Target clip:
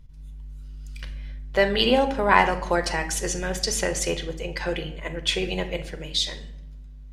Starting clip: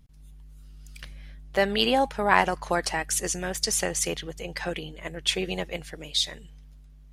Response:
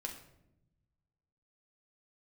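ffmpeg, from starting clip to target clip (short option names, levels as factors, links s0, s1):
-filter_complex "[0:a]lowshelf=f=110:g=6,asplit=2[s0][s1];[1:a]atrim=start_sample=2205,lowpass=7600[s2];[s1][s2]afir=irnorm=-1:irlink=0,volume=1.41[s3];[s0][s3]amix=inputs=2:normalize=0,volume=0.668"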